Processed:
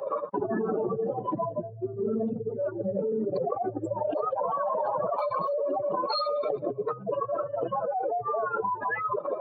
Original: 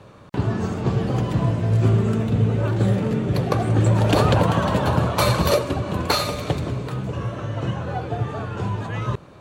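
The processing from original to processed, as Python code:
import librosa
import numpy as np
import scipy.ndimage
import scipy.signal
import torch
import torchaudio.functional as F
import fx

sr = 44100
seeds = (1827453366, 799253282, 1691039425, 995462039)

y = fx.spec_expand(x, sr, power=3.2)
y = scipy.signal.sosfilt(scipy.signal.butter(4, 570.0, 'highpass', fs=sr, output='sos'), y)
y = fx.env_flatten(y, sr, amount_pct=100)
y = y * 10.0 ** (-9.0 / 20.0)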